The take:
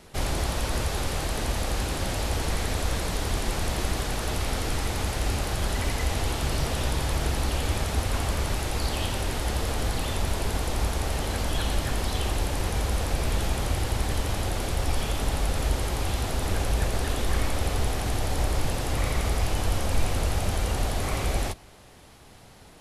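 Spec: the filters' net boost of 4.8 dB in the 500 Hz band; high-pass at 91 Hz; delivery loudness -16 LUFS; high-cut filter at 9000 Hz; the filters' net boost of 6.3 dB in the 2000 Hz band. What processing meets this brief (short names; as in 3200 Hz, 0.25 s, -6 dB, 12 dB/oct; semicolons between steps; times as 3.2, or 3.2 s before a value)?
HPF 91 Hz; LPF 9000 Hz; bell 500 Hz +5.5 dB; bell 2000 Hz +7.5 dB; gain +11.5 dB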